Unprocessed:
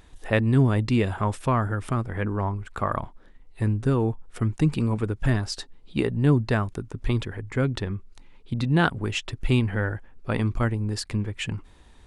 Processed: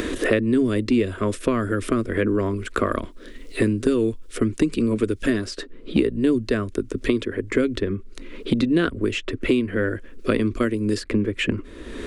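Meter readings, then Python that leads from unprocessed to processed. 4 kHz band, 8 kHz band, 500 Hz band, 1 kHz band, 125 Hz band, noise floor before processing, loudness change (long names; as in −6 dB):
+2.5 dB, +2.5 dB, +6.5 dB, −2.5 dB, −6.0 dB, −52 dBFS, +2.5 dB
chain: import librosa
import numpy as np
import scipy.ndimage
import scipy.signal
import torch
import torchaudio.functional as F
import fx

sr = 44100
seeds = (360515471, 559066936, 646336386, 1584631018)

y = fx.peak_eq(x, sr, hz=390.0, db=6.0, octaves=2.8)
y = fx.fixed_phaser(y, sr, hz=340.0, stages=4)
y = fx.band_squash(y, sr, depth_pct=100)
y = y * 10.0 ** (2.5 / 20.0)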